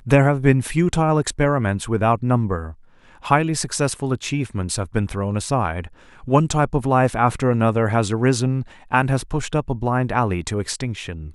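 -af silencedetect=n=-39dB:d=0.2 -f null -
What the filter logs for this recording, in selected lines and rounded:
silence_start: 2.74
silence_end: 3.08 | silence_duration: 0.35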